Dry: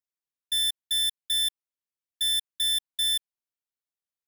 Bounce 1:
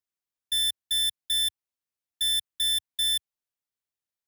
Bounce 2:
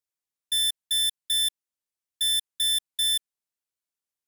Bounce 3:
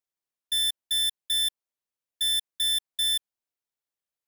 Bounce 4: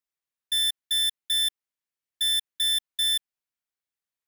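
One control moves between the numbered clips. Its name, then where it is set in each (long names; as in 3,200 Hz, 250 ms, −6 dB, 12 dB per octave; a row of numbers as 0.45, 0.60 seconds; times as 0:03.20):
parametric band, centre frequency: 83, 8,800, 610, 1,900 Hertz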